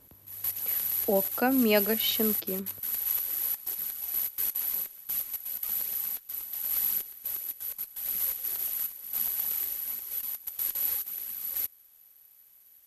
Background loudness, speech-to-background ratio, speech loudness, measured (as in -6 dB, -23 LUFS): -29.5 LUFS, 1.0 dB, -28.5 LUFS